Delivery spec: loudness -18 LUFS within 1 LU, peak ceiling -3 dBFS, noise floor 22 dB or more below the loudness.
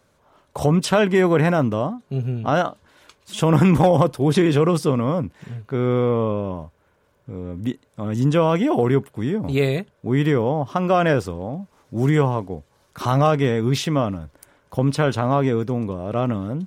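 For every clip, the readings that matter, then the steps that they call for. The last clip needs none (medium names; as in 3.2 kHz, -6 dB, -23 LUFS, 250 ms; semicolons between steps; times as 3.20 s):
loudness -20.5 LUFS; peak level -4.0 dBFS; loudness target -18.0 LUFS
-> trim +2.5 dB; peak limiter -3 dBFS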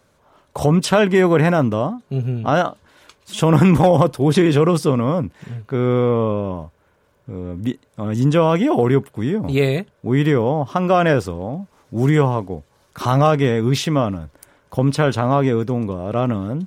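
loudness -18.0 LUFS; peak level -3.0 dBFS; noise floor -60 dBFS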